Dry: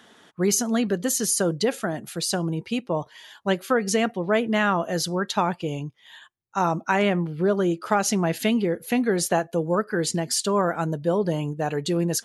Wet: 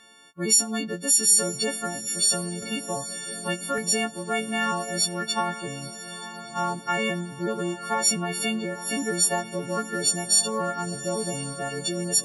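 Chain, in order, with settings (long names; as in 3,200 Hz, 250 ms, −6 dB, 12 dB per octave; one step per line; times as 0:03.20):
every partial snapped to a pitch grid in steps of 4 semitones
feedback delay with all-pass diffusion 972 ms, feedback 54%, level −13 dB
0:02.62–0:03.78: multiband upward and downward compressor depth 40%
level −6.5 dB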